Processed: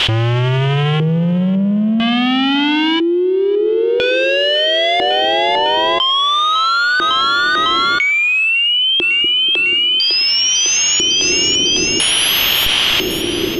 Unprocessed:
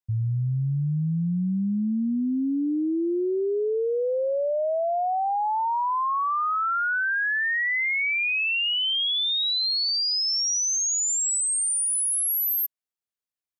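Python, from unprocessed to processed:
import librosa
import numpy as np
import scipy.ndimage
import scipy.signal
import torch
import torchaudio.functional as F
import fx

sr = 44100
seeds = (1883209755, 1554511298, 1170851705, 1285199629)

p1 = fx.fuzz(x, sr, gain_db=47.0, gate_db=-53.0)
p2 = fx.quant_dither(p1, sr, seeds[0], bits=6, dither='triangular')
p3 = fx.filter_lfo_lowpass(p2, sr, shape='square', hz=0.5, low_hz=350.0, high_hz=3100.0, q=6.8)
p4 = p3 + fx.echo_split(p3, sr, split_hz=390.0, low_ms=242, high_ms=553, feedback_pct=52, wet_db=-14, dry=0)
p5 = fx.env_flatten(p4, sr, amount_pct=100)
y = F.gain(torch.from_numpy(p5), -16.5).numpy()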